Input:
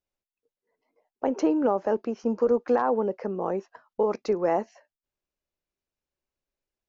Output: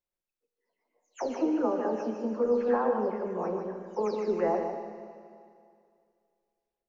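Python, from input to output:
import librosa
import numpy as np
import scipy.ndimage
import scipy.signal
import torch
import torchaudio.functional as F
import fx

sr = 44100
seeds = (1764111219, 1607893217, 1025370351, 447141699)

p1 = fx.spec_delay(x, sr, highs='early', ms=256)
p2 = fx.hum_notches(p1, sr, base_hz=50, count=4)
p3 = p2 + fx.echo_single(p2, sr, ms=150, db=-6.0, dry=0)
p4 = fx.rev_schroeder(p3, sr, rt60_s=2.3, comb_ms=29, drr_db=7.0)
y = p4 * librosa.db_to_amplitude(-4.0)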